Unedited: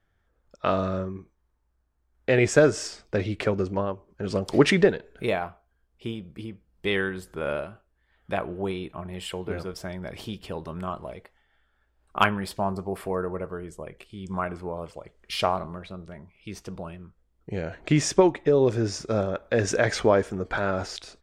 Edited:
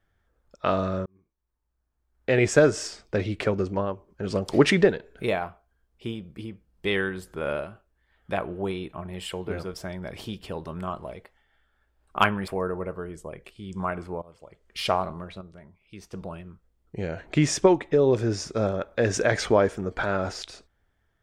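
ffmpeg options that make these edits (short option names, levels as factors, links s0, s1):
-filter_complex "[0:a]asplit=6[s0][s1][s2][s3][s4][s5];[s0]atrim=end=1.06,asetpts=PTS-STARTPTS,afade=t=out:st=1.056:d=0.004:c=hsin[s6];[s1]atrim=start=1.06:end=12.482,asetpts=PTS-STARTPTS,afade=t=in:d=1.41[s7];[s2]atrim=start=13.018:end=14.76,asetpts=PTS-STARTPTS,afade=t=out:st=1.738:d=0.004:c=hsin:silence=0.0944061[s8];[s3]atrim=start=14.76:end=15.952,asetpts=PTS-STARTPTS,afade=t=in:d=0.62:silence=0.0944061[s9];[s4]atrim=start=15.948:end=16.672,asetpts=PTS-STARTPTS,volume=0.501[s10];[s5]atrim=start=16.668[s11];[s6][s7]concat=n=2:v=0:a=1[s12];[s8][s9]concat=n=2:v=0:a=1[s13];[s12][s13]acrossfade=d=0.004:c1=hsin:c2=hsin[s14];[s14][s10]acrossfade=d=0.004:c1=hsin:c2=hsin[s15];[s15][s11]acrossfade=d=0.004:c1=hsin:c2=hsin"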